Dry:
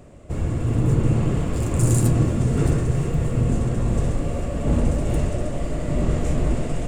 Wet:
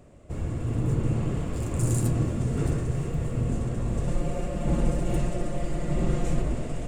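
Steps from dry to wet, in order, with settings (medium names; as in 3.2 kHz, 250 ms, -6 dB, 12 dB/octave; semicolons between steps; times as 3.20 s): 4.07–6.42 s: comb 5.7 ms, depth 97%; trim -6.5 dB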